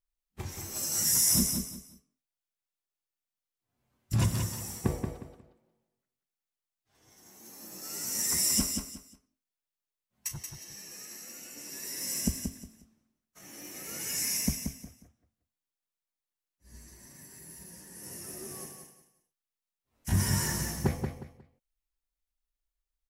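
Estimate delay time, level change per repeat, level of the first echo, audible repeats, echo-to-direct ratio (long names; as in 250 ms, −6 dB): 180 ms, −11.5 dB, −6.0 dB, 3, −5.5 dB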